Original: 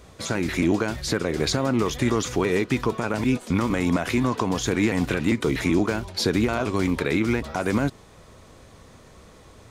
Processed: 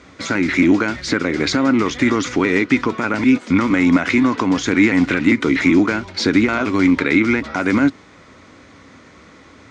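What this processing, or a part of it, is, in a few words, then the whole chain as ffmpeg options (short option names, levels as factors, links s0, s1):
car door speaker: -af "highpass=93,equalizer=f=130:t=q:w=4:g=-7,equalizer=f=280:t=q:w=4:g=9,equalizer=f=440:t=q:w=4:g=-3,equalizer=f=690:t=q:w=4:g=-3,equalizer=f=1400:t=q:w=4:g=6,equalizer=f=2100:t=q:w=4:g=9,lowpass=f=6700:w=0.5412,lowpass=f=6700:w=1.3066,volume=1.58"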